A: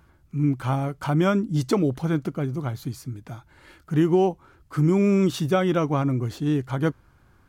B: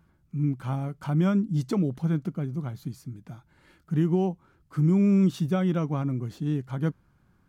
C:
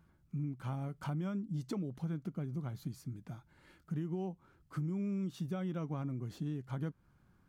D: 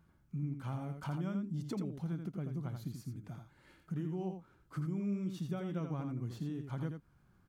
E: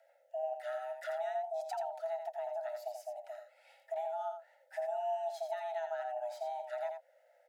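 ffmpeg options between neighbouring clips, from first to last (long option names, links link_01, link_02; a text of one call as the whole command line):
ffmpeg -i in.wav -af "equalizer=frequency=180:width_type=o:width=0.81:gain=10.5,volume=-9dB" out.wav
ffmpeg -i in.wav -af "acompressor=threshold=-31dB:ratio=6,volume=-4dB" out.wav
ffmpeg -i in.wav -af "aecho=1:1:84:0.473,volume=-1dB" out.wav
ffmpeg -i in.wav -af "afreqshift=490,asuperstop=centerf=1100:order=12:qfactor=3.7" out.wav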